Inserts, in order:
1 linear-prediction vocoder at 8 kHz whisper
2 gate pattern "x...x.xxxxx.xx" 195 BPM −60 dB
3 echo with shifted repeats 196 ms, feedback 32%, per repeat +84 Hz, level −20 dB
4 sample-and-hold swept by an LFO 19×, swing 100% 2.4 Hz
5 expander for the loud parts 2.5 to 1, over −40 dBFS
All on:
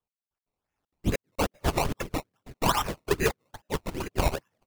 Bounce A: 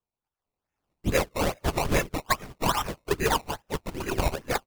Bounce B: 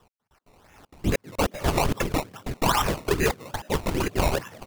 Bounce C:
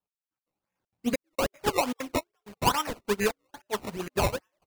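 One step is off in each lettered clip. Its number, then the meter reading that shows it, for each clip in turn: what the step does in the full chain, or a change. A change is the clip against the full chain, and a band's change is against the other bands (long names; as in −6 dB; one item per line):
2, 125 Hz band −1.5 dB
5, change in integrated loudness +3.5 LU
1, 125 Hz band −6.0 dB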